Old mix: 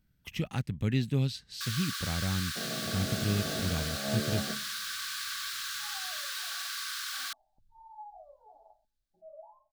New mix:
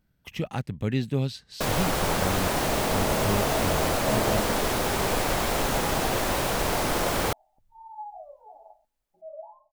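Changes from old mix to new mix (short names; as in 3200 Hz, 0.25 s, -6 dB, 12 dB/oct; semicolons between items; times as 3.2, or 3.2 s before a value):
first sound: remove rippled Chebyshev high-pass 1100 Hz, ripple 9 dB; master: add bell 660 Hz +8.5 dB 2.1 oct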